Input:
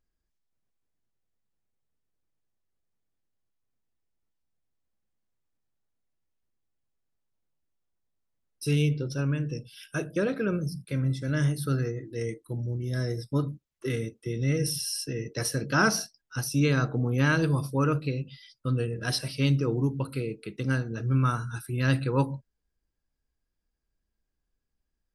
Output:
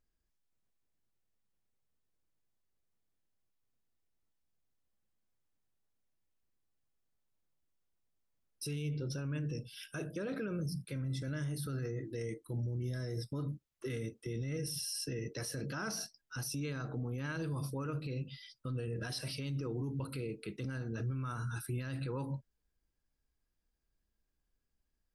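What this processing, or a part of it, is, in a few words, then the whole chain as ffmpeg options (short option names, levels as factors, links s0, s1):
stacked limiters: -af "alimiter=limit=0.141:level=0:latency=1:release=288,alimiter=limit=0.0631:level=0:latency=1:release=111,alimiter=level_in=1.88:limit=0.0631:level=0:latency=1:release=22,volume=0.531,volume=0.841"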